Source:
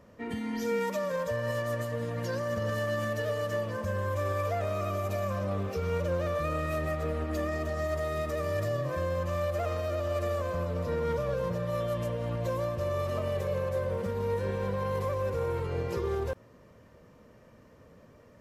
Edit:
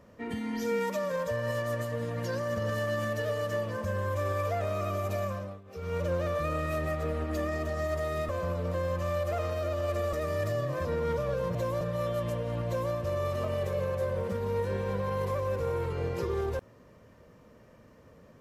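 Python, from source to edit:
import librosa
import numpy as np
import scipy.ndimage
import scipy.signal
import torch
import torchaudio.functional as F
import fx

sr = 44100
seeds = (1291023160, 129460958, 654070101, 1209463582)

y = fx.edit(x, sr, fx.fade_down_up(start_s=5.22, length_s=0.82, db=-21.0, fade_s=0.39),
    fx.swap(start_s=8.29, length_s=0.72, other_s=10.4, other_length_s=0.45),
    fx.duplicate(start_s=12.41, length_s=0.26, to_s=11.55), tone=tone)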